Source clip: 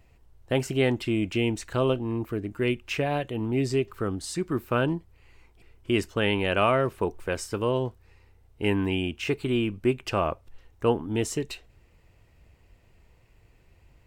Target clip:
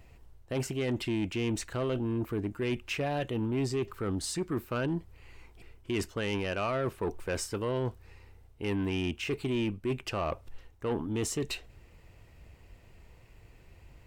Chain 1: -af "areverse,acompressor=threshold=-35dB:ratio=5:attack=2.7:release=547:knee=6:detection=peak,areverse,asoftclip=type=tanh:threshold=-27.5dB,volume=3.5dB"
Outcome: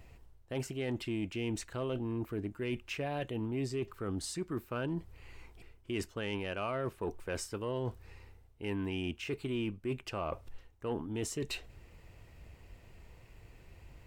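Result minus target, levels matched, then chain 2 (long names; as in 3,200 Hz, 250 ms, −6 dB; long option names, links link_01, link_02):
downward compressor: peak gain reduction +6.5 dB
-af "areverse,acompressor=threshold=-27dB:ratio=5:attack=2.7:release=547:knee=6:detection=peak,areverse,asoftclip=type=tanh:threshold=-27.5dB,volume=3.5dB"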